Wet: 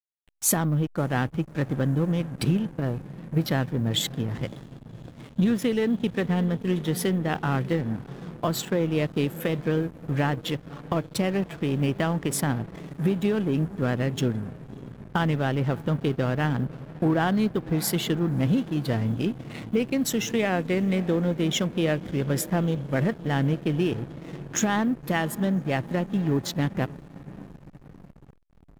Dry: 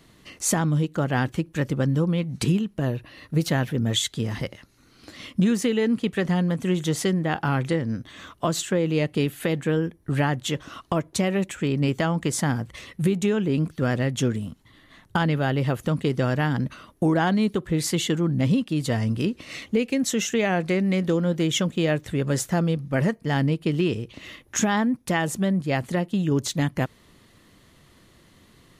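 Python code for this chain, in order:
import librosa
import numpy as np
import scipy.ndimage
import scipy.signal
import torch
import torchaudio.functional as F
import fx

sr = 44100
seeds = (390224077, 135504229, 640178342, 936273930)

y = fx.block_float(x, sr, bits=7)
y = fx.peak_eq(y, sr, hz=12000.0, db=14.5, octaves=0.39)
y = fx.echo_diffused(y, sr, ms=587, feedback_pct=73, wet_db=-15.5)
y = fx.noise_reduce_blind(y, sr, reduce_db=14)
y = fx.backlash(y, sr, play_db=-30.5)
y = y * 10.0 ** (-1.5 / 20.0)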